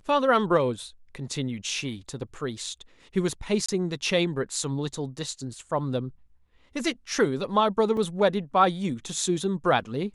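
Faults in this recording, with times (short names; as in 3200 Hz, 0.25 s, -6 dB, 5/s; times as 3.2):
3.66–3.69 gap 25 ms
7.97 gap 2.9 ms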